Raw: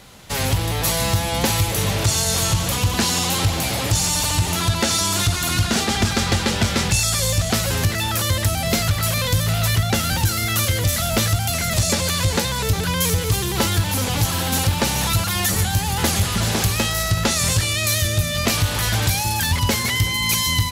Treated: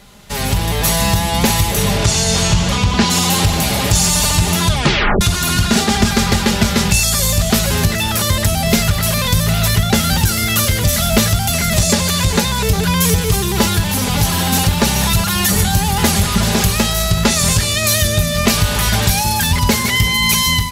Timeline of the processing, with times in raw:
1.97–3.09 s: low-pass 8.9 kHz -> 4.8 kHz
4.68 s: tape stop 0.53 s
6.07–7.59 s: peaking EQ 13 kHz +6.5 dB 0.3 oct
whole clip: bass shelf 150 Hz +5.5 dB; comb 4.9 ms, depth 49%; level rider; trim -1 dB

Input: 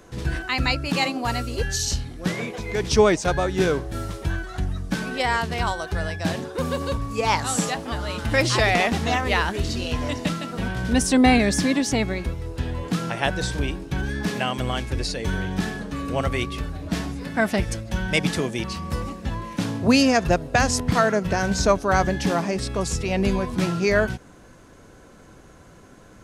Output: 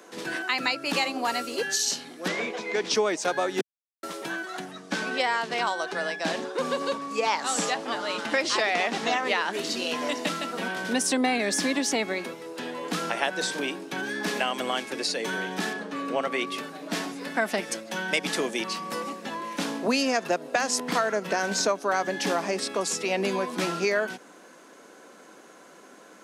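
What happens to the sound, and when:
2.28–2.95 s: low-pass 6.4 kHz
3.61–4.03 s: mute
4.71–9.53 s: low-pass 7.8 kHz
15.73–16.47 s: low-pass 3.6 kHz 6 dB/octave
whole clip: Bessel high-pass 350 Hz, order 8; compression 4:1, threshold -24 dBFS; trim +2 dB

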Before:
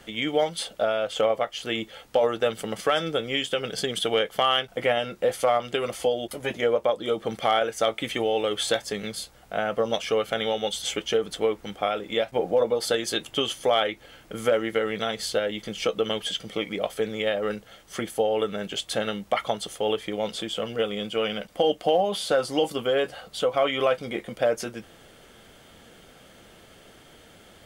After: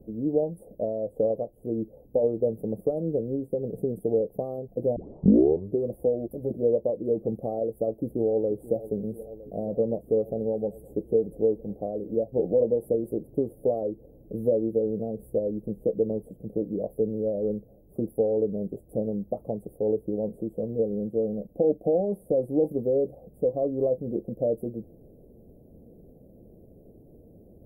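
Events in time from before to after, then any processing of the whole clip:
4.96 s: tape start 0.85 s
7.78–8.74 s: echo throw 480 ms, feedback 80%, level -17 dB
whole clip: inverse Chebyshev band-stop 1.5–5.9 kHz, stop band 60 dB; tilt shelf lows +6.5 dB, about 850 Hz; trim -2 dB

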